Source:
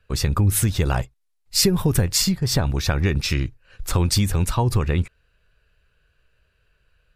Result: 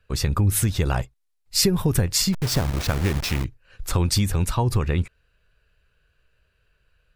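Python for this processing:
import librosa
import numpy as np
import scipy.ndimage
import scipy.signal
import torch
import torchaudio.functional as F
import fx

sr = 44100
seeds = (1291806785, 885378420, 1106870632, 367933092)

y = fx.delta_hold(x, sr, step_db=-23.5, at=(2.32, 3.43), fade=0.02)
y = y * 10.0 ** (-1.5 / 20.0)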